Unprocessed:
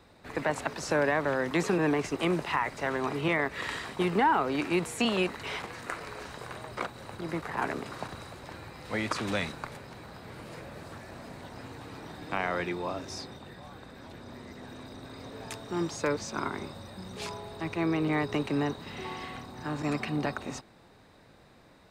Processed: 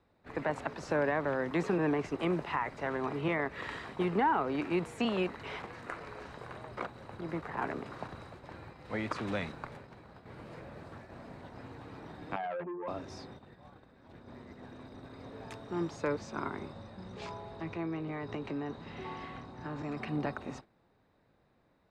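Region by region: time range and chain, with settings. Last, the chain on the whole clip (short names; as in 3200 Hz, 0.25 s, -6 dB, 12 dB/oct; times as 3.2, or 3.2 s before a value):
12.36–12.88 spectral contrast raised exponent 3.1 + core saturation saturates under 1300 Hz
16.73–19.97 LPF 8000 Hz 24 dB/oct + compressor 4:1, threshold -31 dBFS + doubler 18 ms -11.5 dB
whole clip: gate -45 dBFS, range -9 dB; LPF 1900 Hz 6 dB/oct; gain -3 dB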